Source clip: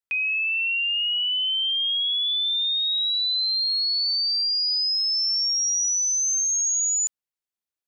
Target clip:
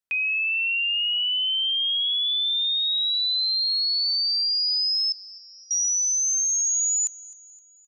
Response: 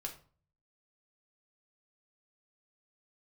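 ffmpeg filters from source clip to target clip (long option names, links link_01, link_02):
-filter_complex "[0:a]asettb=1/sr,asplit=3[link_01][link_02][link_03];[link_01]atrim=end=5.124[link_04];[link_02]atrim=start=5.12:end=5.71,asetpts=PTS-STARTPTS,afade=type=in:duration=0.004:curve=qsin,afade=type=out:start_time=0.586:duration=0.004:curve=qsin,lowpass=1200[link_05];[link_03]atrim=start=5.706[link_06];[link_04][link_05]acrossfade=duration=0.004:curve1=hsin:curve2=qsin[link_07];[link_07][link_06]acrossfade=duration=0.004:curve1=qsin:curve2=hsin,aecho=1:1:259|518|777|1036:0.0944|0.0472|0.0236|0.0118"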